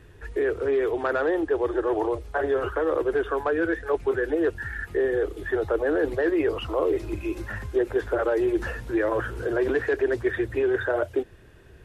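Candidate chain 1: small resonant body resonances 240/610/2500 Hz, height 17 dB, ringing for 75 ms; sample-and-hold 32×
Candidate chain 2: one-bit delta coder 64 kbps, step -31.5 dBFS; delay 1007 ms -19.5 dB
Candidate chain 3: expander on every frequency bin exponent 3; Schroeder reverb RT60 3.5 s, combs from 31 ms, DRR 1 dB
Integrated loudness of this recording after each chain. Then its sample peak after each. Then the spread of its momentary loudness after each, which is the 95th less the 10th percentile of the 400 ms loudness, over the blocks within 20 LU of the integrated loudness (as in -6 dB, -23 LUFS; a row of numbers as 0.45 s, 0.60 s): -21.0 LUFS, -25.5 LUFS, -31.5 LUFS; -4.5 dBFS, -12.5 dBFS, -16.0 dBFS; 8 LU, 5 LU, 7 LU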